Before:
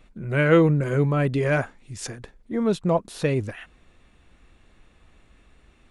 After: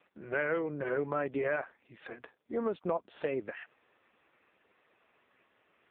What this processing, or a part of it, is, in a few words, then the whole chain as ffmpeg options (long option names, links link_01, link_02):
voicemail: -af "highpass=430,lowpass=2700,acompressor=threshold=-27dB:ratio=10" -ar 8000 -c:a libopencore_amrnb -b:a 5150